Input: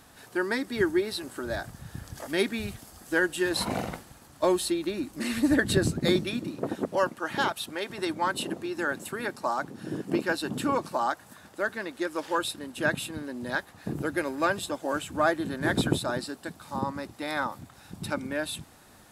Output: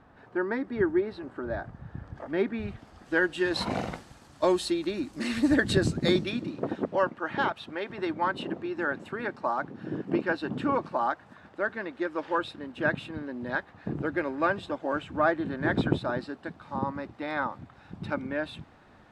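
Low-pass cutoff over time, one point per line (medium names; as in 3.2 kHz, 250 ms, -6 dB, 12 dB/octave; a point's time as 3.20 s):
2.47 s 1.5 kHz
2.91 s 2.8 kHz
3.91 s 6.5 kHz
6.04 s 6.5 kHz
7.07 s 2.5 kHz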